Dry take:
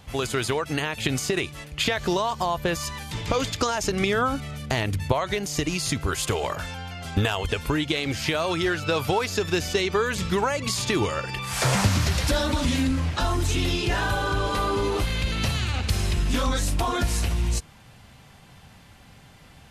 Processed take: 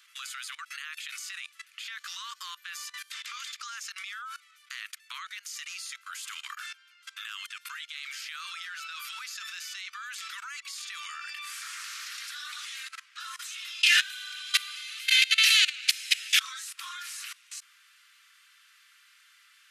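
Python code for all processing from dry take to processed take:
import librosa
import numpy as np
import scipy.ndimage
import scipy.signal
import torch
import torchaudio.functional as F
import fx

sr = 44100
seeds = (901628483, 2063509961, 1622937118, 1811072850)

y = fx.chain(x, sr, fx.steep_highpass(hz=1200.0, slope=36),
    fx.high_shelf_res(hz=1600.0, db=12.0, q=1.5), at=(13.83, 16.4))
y = scipy.signal.sosfilt(scipy.signal.butter(12, 1200.0, 'highpass', fs=sr, output='sos'), y)
y = fx.level_steps(y, sr, step_db=20)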